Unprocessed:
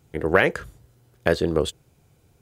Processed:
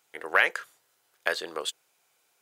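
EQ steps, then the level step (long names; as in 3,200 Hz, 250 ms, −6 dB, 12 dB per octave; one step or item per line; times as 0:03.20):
high-pass filter 1,000 Hz 12 dB per octave
0.0 dB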